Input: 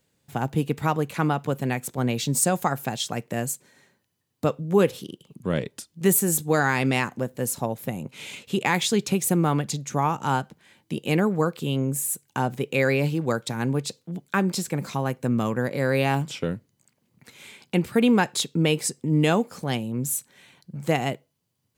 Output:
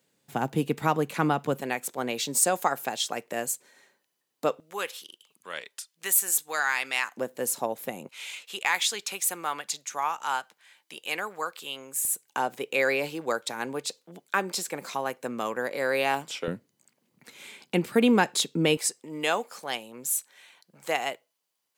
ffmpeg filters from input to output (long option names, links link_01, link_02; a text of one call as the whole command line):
ffmpeg -i in.wav -af "asetnsamples=nb_out_samples=441:pad=0,asendcmd='1.61 highpass f 400;4.6 highpass f 1200;7.17 highpass f 370;8.09 highpass f 1000;12.05 highpass f 480;16.48 highpass f 220;18.77 highpass f 660',highpass=190" out.wav